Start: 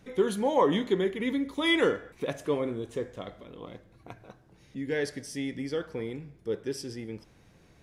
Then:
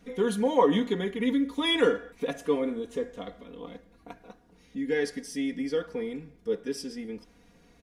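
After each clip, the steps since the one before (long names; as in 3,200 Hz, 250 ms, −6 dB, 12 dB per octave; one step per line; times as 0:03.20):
parametric band 310 Hz +2.5 dB 0.43 octaves
comb filter 4.2 ms, depth 98%
level −2.5 dB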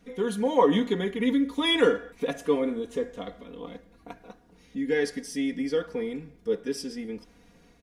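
automatic gain control gain up to 4 dB
level −2 dB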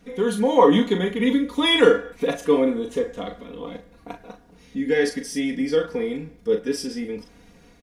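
double-tracking delay 38 ms −7 dB
level +5 dB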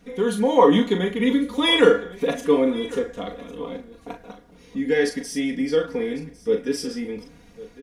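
single-tap delay 1,103 ms −18.5 dB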